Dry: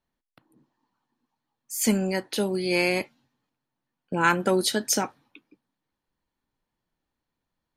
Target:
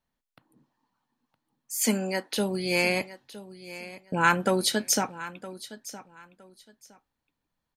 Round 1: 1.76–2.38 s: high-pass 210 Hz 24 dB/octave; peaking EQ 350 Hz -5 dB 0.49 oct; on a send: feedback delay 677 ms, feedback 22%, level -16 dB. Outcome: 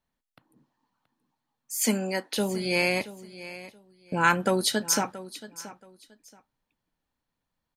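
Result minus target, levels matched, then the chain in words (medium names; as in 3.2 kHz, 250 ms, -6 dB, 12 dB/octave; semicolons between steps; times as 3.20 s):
echo 287 ms early
1.76–2.38 s: high-pass 210 Hz 24 dB/octave; peaking EQ 350 Hz -5 dB 0.49 oct; on a send: feedback delay 964 ms, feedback 22%, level -16 dB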